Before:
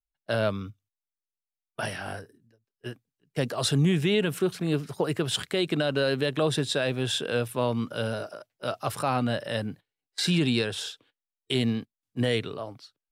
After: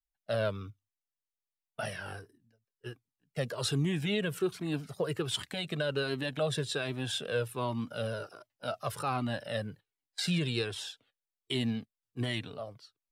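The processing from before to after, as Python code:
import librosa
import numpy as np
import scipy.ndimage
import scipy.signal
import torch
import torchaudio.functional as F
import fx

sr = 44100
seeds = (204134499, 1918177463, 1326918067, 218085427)

y = fx.comb_cascade(x, sr, direction='falling', hz=1.3)
y = y * 10.0 ** (-1.5 / 20.0)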